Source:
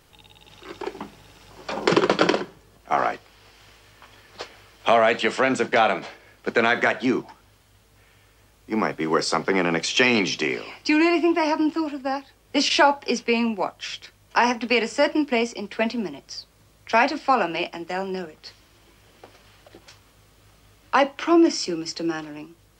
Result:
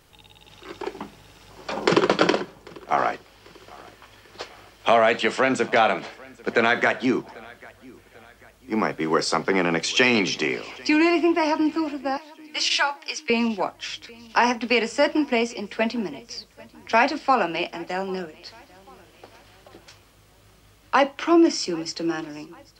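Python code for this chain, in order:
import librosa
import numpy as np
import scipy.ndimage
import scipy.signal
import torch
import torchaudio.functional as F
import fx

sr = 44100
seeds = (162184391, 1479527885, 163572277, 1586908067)

y = fx.highpass(x, sr, hz=1300.0, slope=12, at=(12.17, 13.3))
y = fx.echo_feedback(y, sr, ms=793, feedback_pct=47, wet_db=-24.0)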